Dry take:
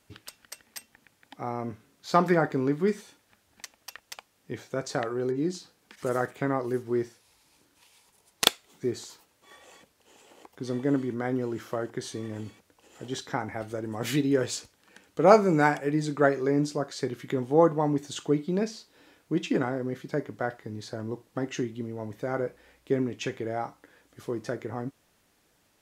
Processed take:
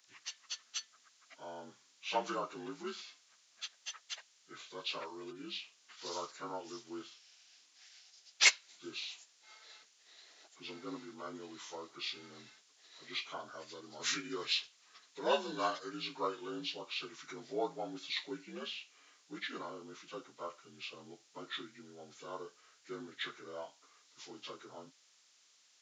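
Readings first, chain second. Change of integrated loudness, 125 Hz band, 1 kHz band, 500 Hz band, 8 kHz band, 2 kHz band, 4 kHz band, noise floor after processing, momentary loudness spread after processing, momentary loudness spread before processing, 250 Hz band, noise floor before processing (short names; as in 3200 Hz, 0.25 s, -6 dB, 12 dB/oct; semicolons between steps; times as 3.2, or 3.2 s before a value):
-11.0 dB, -26.0 dB, -12.0 dB, -16.0 dB, -2.0 dB, -5.0 dB, -2.0 dB, -68 dBFS, 20 LU, 19 LU, -19.0 dB, -68 dBFS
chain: inharmonic rescaling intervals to 82%; differentiator; gain +9 dB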